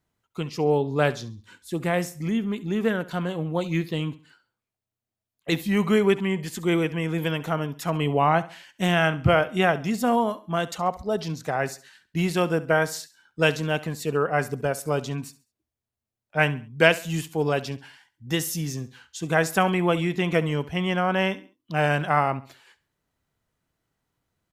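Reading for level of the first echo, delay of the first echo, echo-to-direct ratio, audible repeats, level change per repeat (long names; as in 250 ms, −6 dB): −17.5 dB, 68 ms, −17.0 dB, 2, −9.5 dB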